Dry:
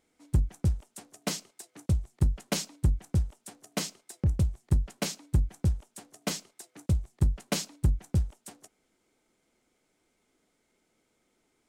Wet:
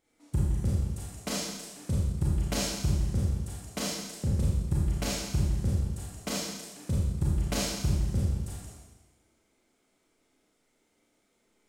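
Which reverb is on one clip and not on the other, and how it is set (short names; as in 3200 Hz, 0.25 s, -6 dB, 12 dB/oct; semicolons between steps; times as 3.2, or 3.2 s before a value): Schroeder reverb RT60 1.2 s, combs from 27 ms, DRR -6 dB; gain -5 dB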